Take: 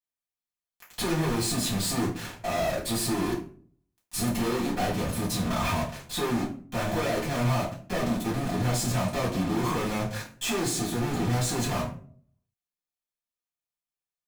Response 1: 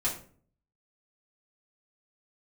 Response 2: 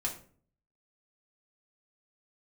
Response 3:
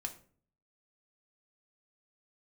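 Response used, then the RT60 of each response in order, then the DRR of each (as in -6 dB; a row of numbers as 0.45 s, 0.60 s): 1; 0.45 s, 0.45 s, 0.50 s; -6.5 dB, -1.5 dB, 4.0 dB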